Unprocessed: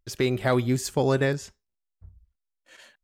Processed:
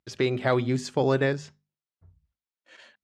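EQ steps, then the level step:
band-pass filter 110–4,900 Hz
mains-hum notches 50/100/150/200/250 Hz
0.0 dB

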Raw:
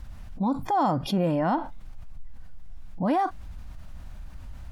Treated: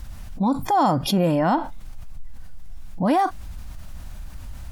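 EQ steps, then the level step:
high-shelf EQ 5,100 Hz +10.5 dB
+4.5 dB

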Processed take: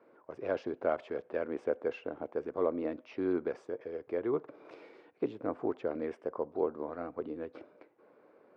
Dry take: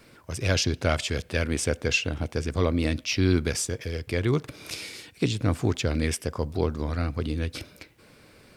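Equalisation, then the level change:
flat-topped band-pass 620 Hz, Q 0.73
parametric band 490 Hz +2 dB 1.4 octaves
−4.5 dB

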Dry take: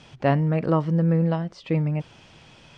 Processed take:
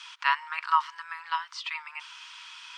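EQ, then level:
Chebyshev high-pass with heavy ripple 940 Hz, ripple 3 dB
+9.0 dB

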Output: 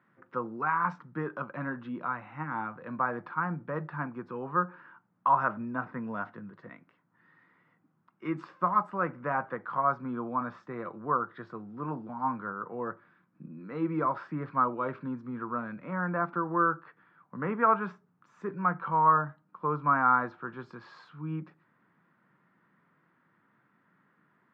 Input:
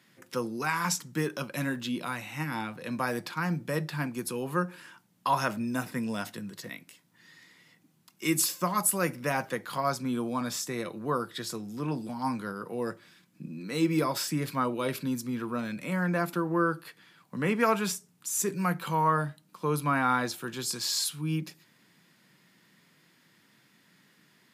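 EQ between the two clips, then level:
dynamic equaliser 1,000 Hz, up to +3 dB, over −43 dBFS, Q 1.1
low-pass with resonance 1,300 Hz, resonance Q 2.6
high-frequency loss of the air 130 metres
−5.0 dB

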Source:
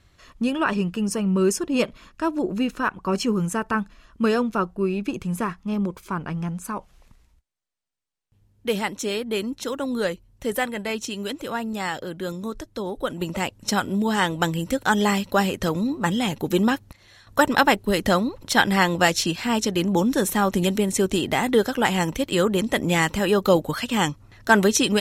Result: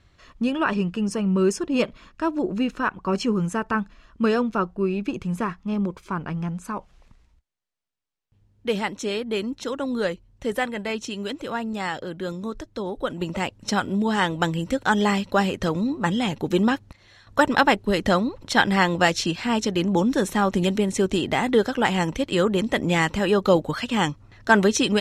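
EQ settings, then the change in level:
high-frequency loss of the air 58 metres
0.0 dB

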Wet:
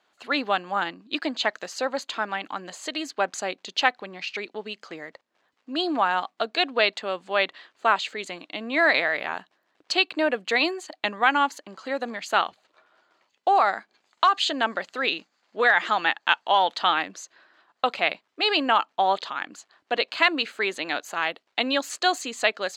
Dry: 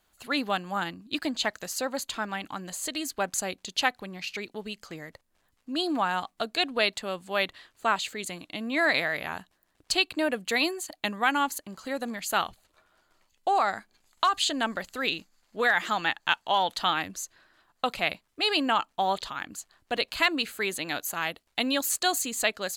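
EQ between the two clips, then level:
high-pass filter 330 Hz 12 dB per octave
high-frequency loss of the air 160 metres
high-shelf EQ 9,200 Hz +7 dB
+5.5 dB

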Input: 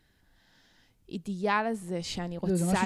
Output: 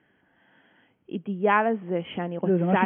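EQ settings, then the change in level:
high-pass filter 210 Hz 12 dB per octave
Chebyshev low-pass filter 3,300 Hz, order 10
high-frequency loss of the air 330 metres
+8.5 dB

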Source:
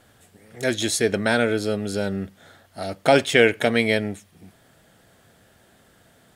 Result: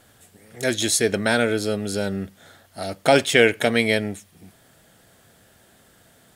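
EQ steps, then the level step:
high-shelf EQ 5,000 Hz +6 dB
0.0 dB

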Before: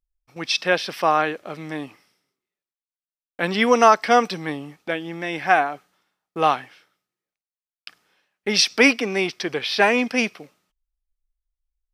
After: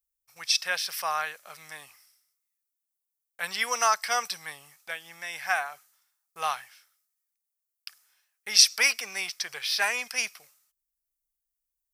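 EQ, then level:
spectral tilt +3 dB per octave
guitar amp tone stack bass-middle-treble 10-0-10
parametric band 3,200 Hz −11 dB 1.5 octaves
+1.5 dB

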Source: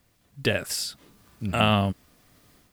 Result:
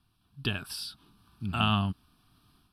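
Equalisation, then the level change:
low-pass filter 12,000 Hz 24 dB per octave
phaser with its sweep stopped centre 2,000 Hz, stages 6
−3.0 dB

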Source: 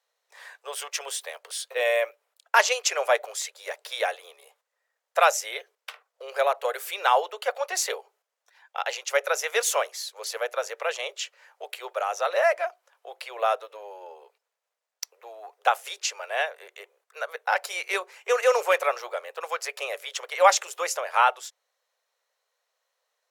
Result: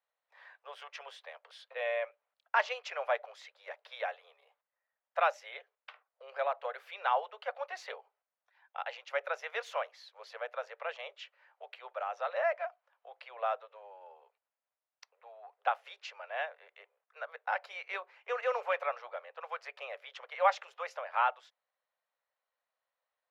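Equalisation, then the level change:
high-pass filter 540 Hz 24 dB per octave
high-frequency loss of the air 330 metres
−7.0 dB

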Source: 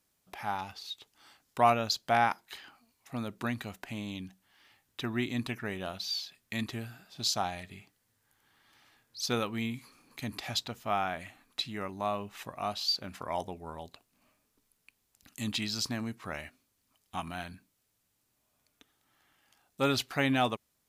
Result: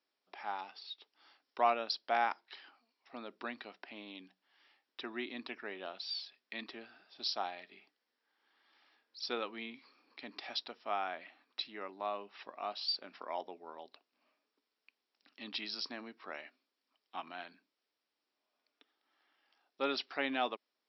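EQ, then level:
high-pass filter 290 Hz 24 dB per octave
linear-phase brick-wall low-pass 5,700 Hz
−5.5 dB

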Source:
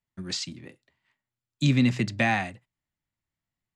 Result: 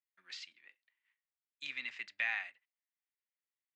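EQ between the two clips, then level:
four-pole ladder band-pass 2,700 Hz, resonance 30%
high-shelf EQ 2,500 Hz −10.5 dB
+6.5 dB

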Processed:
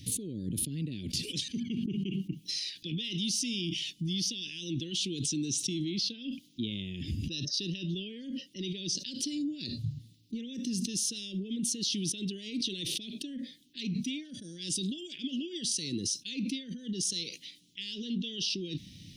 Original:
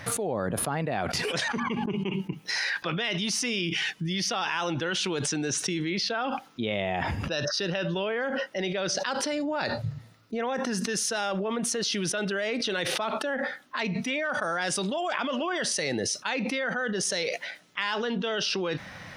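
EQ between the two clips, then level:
elliptic band-stop filter 310–3,200 Hz, stop band 60 dB
−1.5 dB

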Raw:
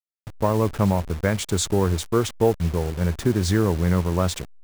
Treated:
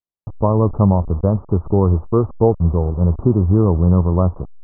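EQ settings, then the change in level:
Butterworth low-pass 1,200 Hz 72 dB per octave
low-shelf EQ 180 Hz +6 dB
+3.5 dB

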